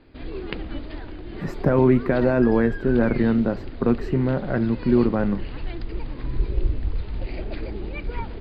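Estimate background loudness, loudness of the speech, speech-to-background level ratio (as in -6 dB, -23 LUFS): -33.5 LUFS, -21.5 LUFS, 12.0 dB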